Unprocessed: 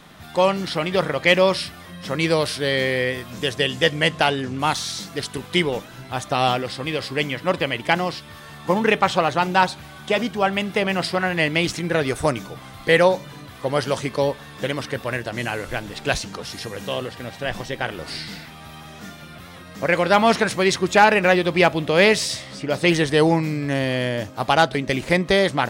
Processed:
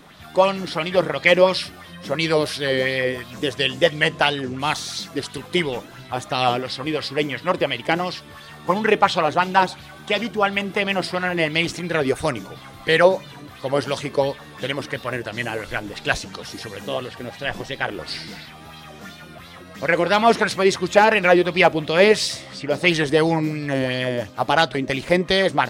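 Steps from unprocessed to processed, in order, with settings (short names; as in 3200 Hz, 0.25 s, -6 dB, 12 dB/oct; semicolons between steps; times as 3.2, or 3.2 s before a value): wow and flutter 40 cents; LFO bell 2.9 Hz 300–4400 Hz +9 dB; gain -2.5 dB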